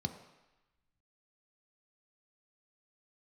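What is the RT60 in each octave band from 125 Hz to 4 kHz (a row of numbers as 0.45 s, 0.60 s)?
0.85 s, 0.85 s, 0.95 s, 1.1 s, 1.2 s, 1.1 s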